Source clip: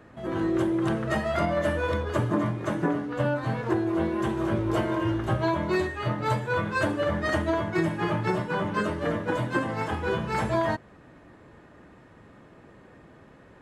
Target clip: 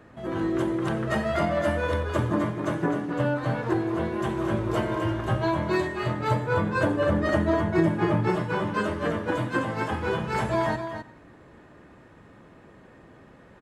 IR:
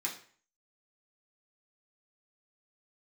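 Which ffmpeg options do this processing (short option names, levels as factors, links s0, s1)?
-filter_complex "[0:a]asettb=1/sr,asplit=3[s0][s1][s2];[s0]atrim=end=6.304[s3];[s1]atrim=start=6.3:end=8.3,asetpts=PTS-STARTPTS,afade=t=in:d=0.004:c=qsin,afade=t=out:st=1.996:d=0.004:c=qsin,tiltshelf=f=1100:g=4[s4];[s2]atrim=start=8.296[s5];[s3][s4]acrossfade=d=0.004:c1=hsin:c2=qsin[s6];[s6][s5]acrossfade=d=0.004:c1=qsin:c2=hsin,aecho=1:1:259:0.376,asplit=2[s7][s8];[1:a]atrim=start_sample=2205,adelay=89[s9];[s8][s9]afir=irnorm=-1:irlink=0,volume=0.0944[s10];[s7][s10]amix=inputs=2:normalize=0"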